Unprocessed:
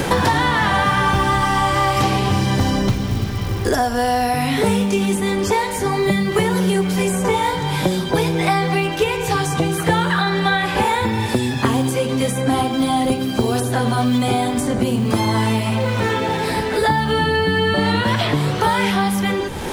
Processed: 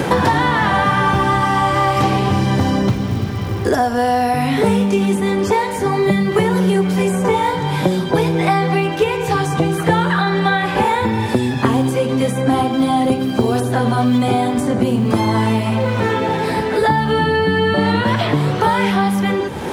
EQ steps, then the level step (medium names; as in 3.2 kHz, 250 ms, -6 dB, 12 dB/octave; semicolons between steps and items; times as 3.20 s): high-pass 93 Hz; treble shelf 2.6 kHz -8 dB; +3.0 dB